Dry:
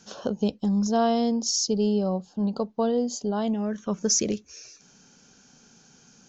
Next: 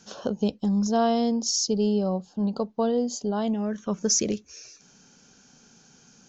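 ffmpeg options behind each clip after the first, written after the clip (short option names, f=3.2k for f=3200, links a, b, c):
-af anull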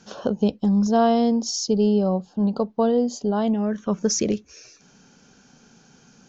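-af "lowpass=f=3.1k:p=1,volume=4.5dB"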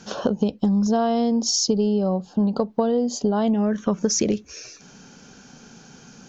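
-af "acompressor=threshold=-24dB:ratio=10,volume=7dB"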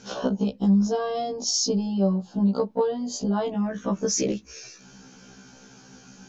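-af "afftfilt=real='re*1.73*eq(mod(b,3),0)':imag='im*1.73*eq(mod(b,3),0)':win_size=2048:overlap=0.75"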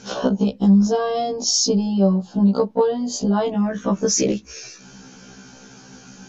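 -af "volume=6dB" -ar 32000 -c:a libmp3lame -b:a 56k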